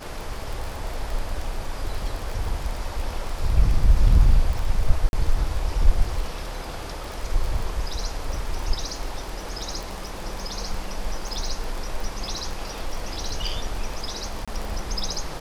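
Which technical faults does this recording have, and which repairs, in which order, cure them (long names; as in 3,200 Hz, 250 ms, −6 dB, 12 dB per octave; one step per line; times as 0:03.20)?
surface crackle 27 per second −26 dBFS
0:05.09–0:05.13: drop-out 41 ms
0:14.45–0:14.48: drop-out 26 ms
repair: click removal
repair the gap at 0:05.09, 41 ms
repair the gap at 0:14.45, 26 ms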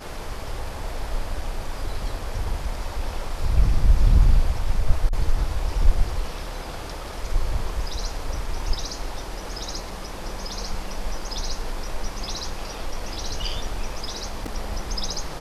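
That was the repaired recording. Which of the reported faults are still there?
none of them is left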